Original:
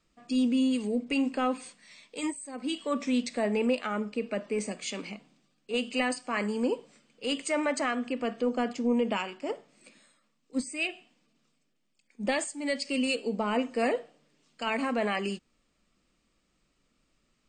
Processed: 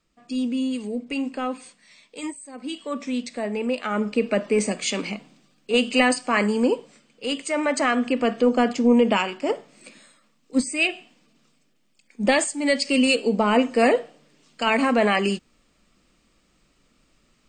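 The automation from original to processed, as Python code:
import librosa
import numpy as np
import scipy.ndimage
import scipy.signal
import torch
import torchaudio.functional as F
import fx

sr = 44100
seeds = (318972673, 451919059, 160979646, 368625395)

y = fx.gain(x, sr, db=fx.line((3.65, 0.5), (4.1, 10.0), (6.29, 10.0), (7.47, 3.0), (7.97, 9.5)))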